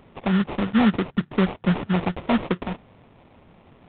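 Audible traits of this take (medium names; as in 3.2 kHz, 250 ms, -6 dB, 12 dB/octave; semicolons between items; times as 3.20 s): aliases and images of a low sample rate 1.6 kHz, jitter 20%; G.726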